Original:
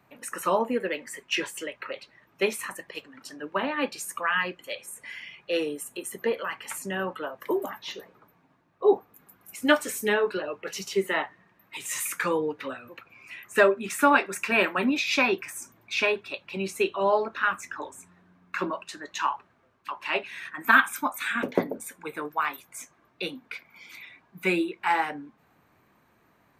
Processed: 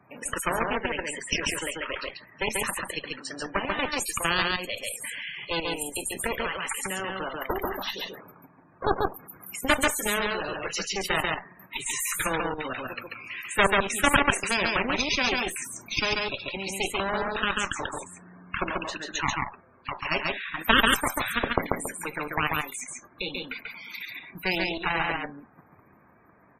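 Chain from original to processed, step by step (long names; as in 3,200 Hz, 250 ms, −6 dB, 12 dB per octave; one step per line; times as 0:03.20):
output level in coarse steps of 9 dB
harmonic generator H 4 −9 dB, 7 −23 dB, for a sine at −5.5 dBFS
spectral peaks only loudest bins 64
on a send: single-tap delay 139 ms −4 dB
on the sum: every bin compressed towards the loudest bin 2 to 1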